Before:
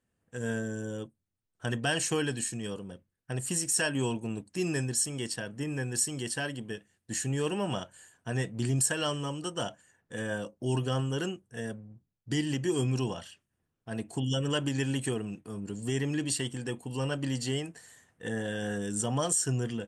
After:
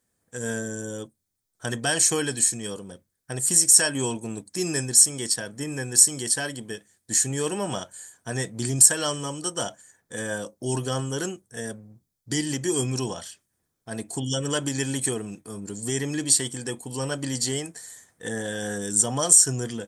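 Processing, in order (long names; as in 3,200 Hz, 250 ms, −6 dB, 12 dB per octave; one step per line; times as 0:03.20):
bass and treble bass −4 dB, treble +10 dB
notch filter 2,800 Hz, Q 5.9
level +4 dB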